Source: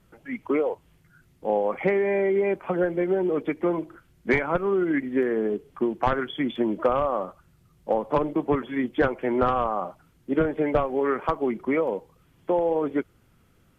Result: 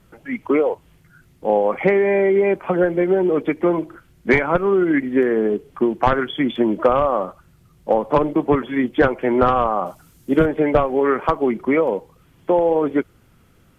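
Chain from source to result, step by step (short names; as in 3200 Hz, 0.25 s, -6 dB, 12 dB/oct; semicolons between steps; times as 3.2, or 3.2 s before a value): 9.86–10.46 tone controls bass +2 dB, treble +12 dB; gain +6.5 dB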